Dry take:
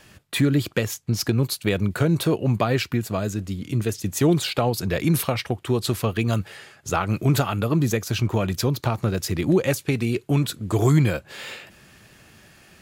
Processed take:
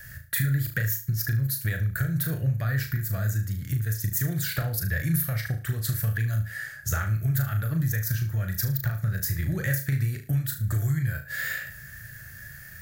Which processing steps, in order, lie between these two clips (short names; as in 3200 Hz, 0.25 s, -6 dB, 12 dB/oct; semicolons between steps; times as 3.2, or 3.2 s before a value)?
EQ curve 130 Hz 0 dB, 230 Hz -20 dB, 410 Hz -23 dB, 600 Hz -15 dB, 1000 Hz -25 dB, 1700 Hz +4 dB, 2600 Hz -20 dB, 6000 Hz -7 dB, 9400 Hz -6 dB, 15000 Hz +11 dB; compressor 6:1, threshold -34 dBFS, peak gain reduction 15 dB; flutter echo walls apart 6.3 m, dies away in 0.35 s; gain +9 dB